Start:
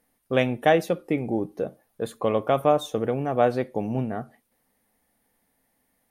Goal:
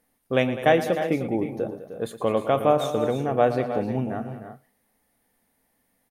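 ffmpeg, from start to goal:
ffmpeg -i in.wav -af "aecho=1:1:114|203|306|343:0.211|0.2|0.282|0.188" out.wav

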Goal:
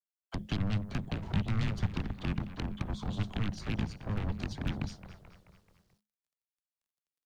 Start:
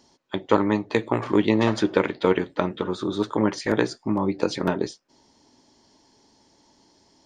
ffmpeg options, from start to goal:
ffmpeg -i in.wav -filter_complex "[0:a]agate=range=-23dB:threshold=-53dB:ratio=16:detection=peak,acrossover=split=370|900[link_01][link_02][link_03];[link_03]acompressor=threshold=-42dB:ratio=12[link_04];[link_01][link_02][link_04]amix=inputs=3:normalize=0,alimiter=limit=-12dB:level=0:latency=1:release=81,aeval=exprs='0.251*(cos(1*acos(clip(val(0)/0.251,-1,1)))-cos(1*PI/2))+0.00891*(cos(5*acos(clip(val(0)/0.251,-1,1)))-cos(5*PI/2))+0.0282*(cos(6*acos(clip(val(0)/0.251,-1,1)))-cos(6*PI/2))+0.0891*(cos(7*acos(clip(val(0)/0.251,-1,1)))-cos(7*PI/2))+0.0398*(cos(8*acos(clip(val(0)/0.251,-1,1)))-cos(8*PI/2))':channel_layout=same,asplit=6[link_05][link_06][link_07][link_08][link_09][link_10];[link_06]adelay=217,afreqshift=-79,volume=-18dB[link_11];[link_07]adelay=434,afreqshift=-158,volume=-23.4dB[link_12];[link_08]adelay=651,afreqshift=-237,volume=-28.7dB[link_13];[link_09]adelay=868,afreqshift=-316,volume=-34.1dB[link_14];[link_10]adelay=1085,afreqshift=-395,volume=-39.4dB[link_15];[link_05][link_11][link_12][link_13][link_14][link_15]amix=inputs=6:normalize=0,asplit=2[link_16][link_17];[link_17]asoftclip=type=tanh:threshold=-22.5dB,volume=-5.5dB[link_18];[link_16][link_18]amix=inputs=2:normalize=0,acrusher=bits=10:mix=0:aa=0.000001,afreqshift=-210,acrossover=split=240|3000[link_19][link_20][link_21];[link_20]acompressor=threshold=-36dB:ratio=4[link_22];[link_19][link_22][link_21]amix=inputs=3:normalize=0,volume=-8.5dB" out.wav

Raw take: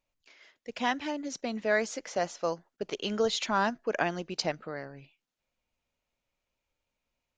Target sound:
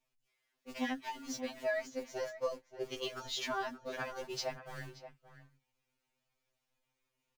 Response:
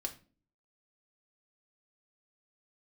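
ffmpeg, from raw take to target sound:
-filter_complex "[0:a]aeval=exprs='val(0)+0.5*0.00944*sgn(val(0))':channel_layout=same,acrossover=split=160[link_01][link_02];[link_02]acompressor=threshold=-32dB:ratio=4[link_03];[link_01][link_03]amix=inputs=2:normalize=0,agate=range=-35dB:threshold=-37dB:ratio=16:detection=peak,asplit=2[link_04][link_05];[link_05]adelay=577.3,volume=-12dB,highshelf=frequency=4000:gain=-13[link_06];[link_04][link_06]amix=inputs=2:normalize=0,afftfilt=real='re*2.45*eq(mod(b,6),0)':imag='im*2.45*eq(mod(b,6),0)':win_size=2048:overlap=0.75"

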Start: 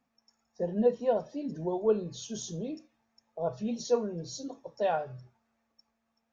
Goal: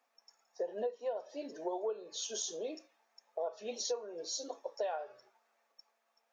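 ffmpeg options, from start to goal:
ffmpeg -i in.wav -af "highpass=frequency=430:width=0.5412,highpass=frequency=430:width=1.3066,acompressor=threshold=-37dB:ratio=16,volume=4dB" out.wav

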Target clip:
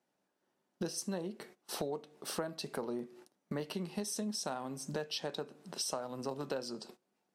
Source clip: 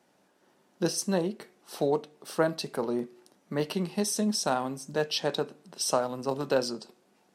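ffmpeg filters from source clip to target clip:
ffmpeg -i in.wav -af "agate=range=-19dB:threshold=-53dB:ratio=16:detection=peak,acompressor=threshold=-40dB:ratio=5,volume=3.5dB" out.wav

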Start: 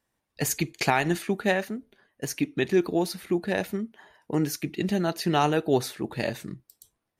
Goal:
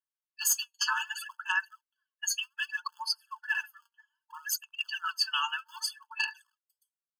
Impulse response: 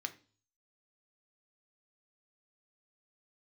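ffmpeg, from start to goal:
-filter_complex "[0:a]afftdn=noise_reduction=30:noise_floor=-37,aecho=1:1:4.6:0.54,acrossover=split=370[link_01][link_02];[link_02]acompressor=threshold=-32dB:ratio=2[link_03];[link_01][link_03]amix=inputs=2:normalize=0,aphaser=in_gain=1:out_gain=1:delay=4.3:decay=0.68:speed=0.64:type=sinusoidal,acrossover=split=420|1400[link_04][link_05][link_06];[link_06]aeval=exprs='0.168*sin(PI/2*1.58*val(0)/0.168)':channel_layout=same[link_07];[link_04][link_05][link_07]amix=inputs=3:normalize=0,afftfilt=real='re*eq(mod(floor(b*sr/1024/870),2),1)':imag='im*eq(mod(floor(b*sr/1024/870),2),1)':win_size=1024:overlap=0.75"

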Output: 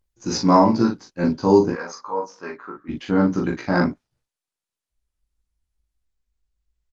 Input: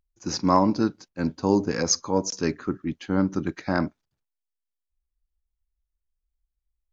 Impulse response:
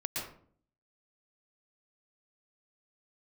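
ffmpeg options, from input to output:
-filter_complex "[0:a]asplit=3[link_01][link_02][link_03];[link_01]afade=type=out:start_time=1.69:duration=0.02[link_04];[link_02]bandpass=frequency=1100:width_type=q:width=1.9:csg=0,afade=type=in:start_time=1.69:duration=0.02,afade=type=out:start_time=2.88:duration=0.02[link_05];[link_03]afade=type=in:start_time=2.88:duration=0.02[link_06];[link_04][link_05][link_06]amix=inputs=3:normalize=0,asplit=2[link_07][link_08];[link_08]adelay=17,volume=-2dB[link_09];[link_07][link_09]amix=inputs=2:normalize=0,aecho=1:1:15|40:0.398|0.631,volume=2dB" -ar 48000 -c:a libopus -b:a 24k

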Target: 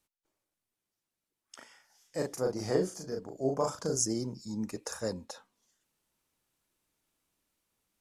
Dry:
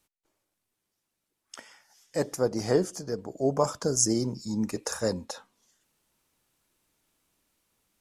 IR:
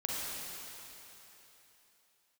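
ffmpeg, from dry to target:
-filter_complex "[0:a]asettb=1/sr,asplit=3[link_01][link_02][link_03];[link_01]atrim=end=1.574[link_04];[link_02]atrim=start=1.57:end=4.03,asetpts=PTS-STARTPTS,afade=type=in:duration=0.004:curve=qsin,afade=type=out:start_time=2.456:duration=0.004:curve=qsin,asplit=2[link_05][link_06];[link_06]adelay=38,volume=-3dB[link_07];[link_05][link_07]amix=inputs=2:normalize=0,atrim=end_sample=108486[link_08];[link_03]atrim=start=4.026[link_09];[link_04][link_08]acrossfade=duration=0.004:curve1=hsin:curve2=qsin[link_10];[link_10][link_09]acrossfade=duration=0.004:curve1=qsin:curve2=hsin,volume=-6.5dB"

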